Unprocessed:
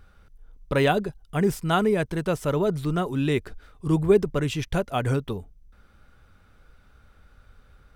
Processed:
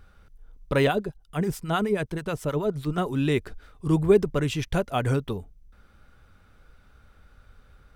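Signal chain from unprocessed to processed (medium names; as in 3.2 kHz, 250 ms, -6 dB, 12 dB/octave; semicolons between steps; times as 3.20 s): 0.87–2.98 s: harmonic tremolo 9.4 Hz, depth 70%, crossover 810 Hz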